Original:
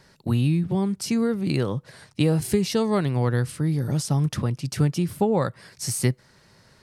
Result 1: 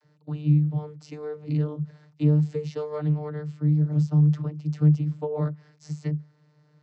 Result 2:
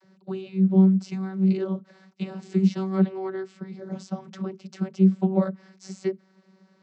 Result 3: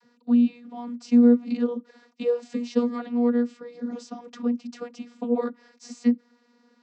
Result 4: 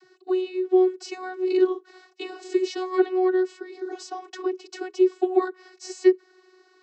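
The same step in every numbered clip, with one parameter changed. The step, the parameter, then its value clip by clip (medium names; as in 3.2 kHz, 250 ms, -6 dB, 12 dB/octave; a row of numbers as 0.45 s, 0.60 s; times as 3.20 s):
vocoder, frequency: 150 Hz, 190 Hz, 240 Hz, 370 Hz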